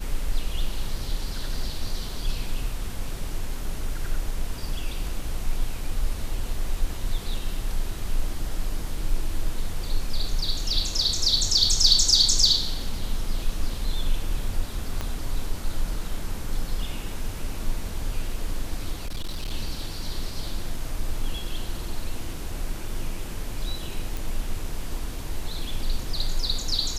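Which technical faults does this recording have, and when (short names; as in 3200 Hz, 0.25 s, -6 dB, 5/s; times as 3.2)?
15.01 pop -15 dBFS
19.03–19.52 clipped -25.5 dBFS
24.17 pop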